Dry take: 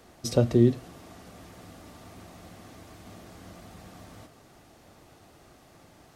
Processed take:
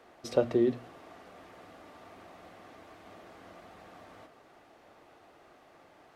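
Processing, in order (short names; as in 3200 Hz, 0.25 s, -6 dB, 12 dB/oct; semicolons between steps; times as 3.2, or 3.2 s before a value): tone controls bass -14 dB, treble -14 dB; notches 60/120/180/240 Hz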